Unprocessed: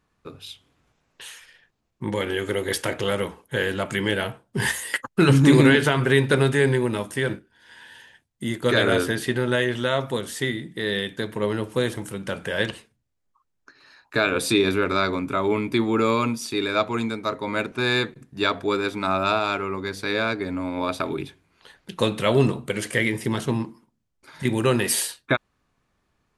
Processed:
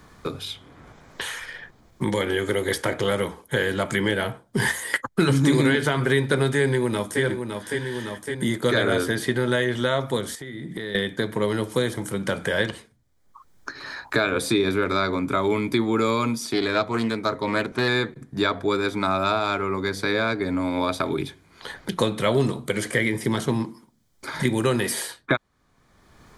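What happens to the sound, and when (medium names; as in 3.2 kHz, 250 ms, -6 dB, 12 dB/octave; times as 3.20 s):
6.59–7.22 s: echo throw 560 ms, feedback 50%, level -10 dB
10.35–10.95 s: compression 5:1, threshold -42 dBFS
16.51–17.88 s: loudspeaker Doppler distortion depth 0.2 ms
whole clip: band-stop 2.7 kHz, Q 5.8; three bands compressed up and down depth 70%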